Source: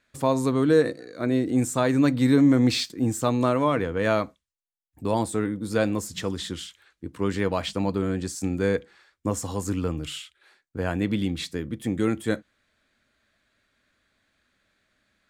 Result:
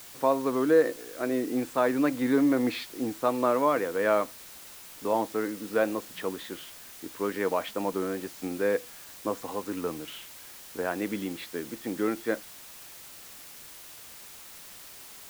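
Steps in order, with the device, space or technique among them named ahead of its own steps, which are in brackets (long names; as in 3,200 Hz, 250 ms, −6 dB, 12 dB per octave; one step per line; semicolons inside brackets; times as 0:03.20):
wax cylinder (band-pass filter 350–2,100 Hz; tape wow and flutter; white noise bed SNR 17 dB)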